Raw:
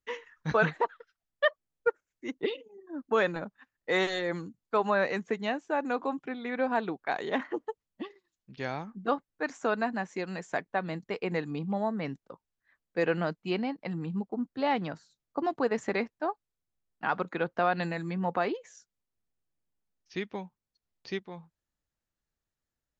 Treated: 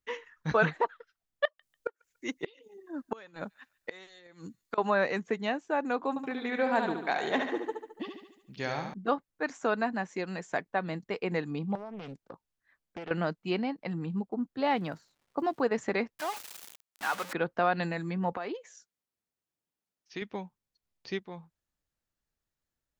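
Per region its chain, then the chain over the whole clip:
1.45–4.78 s: treble shelf 2.6 kHz +11 dB + inverted gate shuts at -19 dBFS, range -26 dB + feedback echo behind a high-pass 144 ms, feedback 35%, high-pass 1.8 kHz, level -22 dB
6.09–8.94 s: treble shelf 5.3 kHz +11.5 dB + feedback delay 72 ms, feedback 53%, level -6 dB
11.75–13.11 s: compression 16:1, threshold -36 dBFS + loudspeaker Doppler distortion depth 0.8 ms
14.63–15.61 s: crackle 470 per s -56 dBFS + tape noise reduction on one side only decoder only
16.19–17.33 s: jump at every zero crossing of -30.5 dBFS + high-pass 1.2 kHz 6 dB/octave
18.32–20.22 s: high-pass 220 Hz 6 dB/octave + compression, threshold -31 dBFS
whole clip: none

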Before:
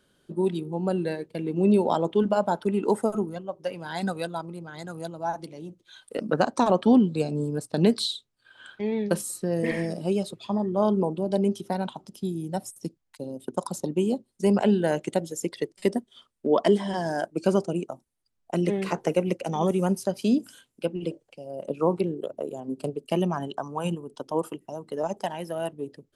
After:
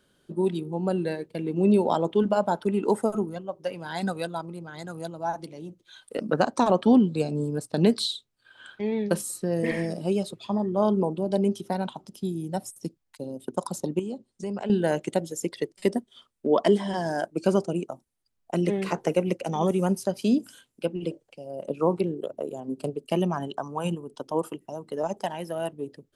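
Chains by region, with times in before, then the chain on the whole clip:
13.99–14.70 s: low-pass 8.8 kHz 24 dB/octave + compression 2.5:1, threshold -33 dBFS
whole clip: none

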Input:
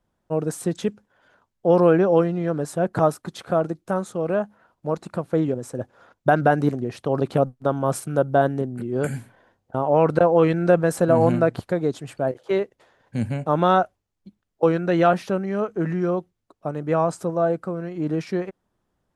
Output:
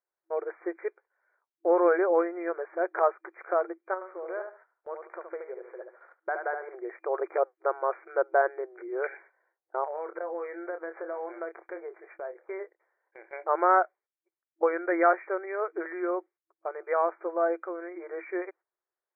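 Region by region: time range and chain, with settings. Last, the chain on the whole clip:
3.94–6.75 s: compression 1.5:1, threshold -38 dBFS + feedback delay 73 ms, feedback 25%, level -6 dB
9.84–13.33 s: doubling 27 ms -10 dB + compression 3:1, threshold -28 dBFS + distance through air 240 m
whole clip: FFT band-pass 330–2400 Hz; peaking EQ 1.8 kHz +7.5 dB 1.9 oct; gate -46 dBFS, range -13 dB; trim -7 dB

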